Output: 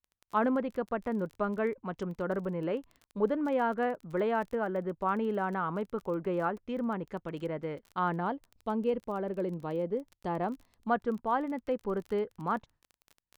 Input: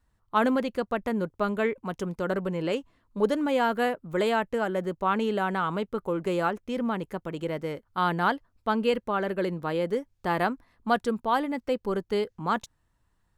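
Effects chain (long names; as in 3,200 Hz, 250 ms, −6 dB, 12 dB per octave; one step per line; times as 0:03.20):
noise gate with hold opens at −55 dBFS
0:08.20–0:10.89: parametric band 1,600 Hz −9.5 dB 1.2 octaves
treble cut that deepens with the level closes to 1,700 Hz, closed at −26 dBFS
surface crackle 20 per second −36 dBFS
level −4 dB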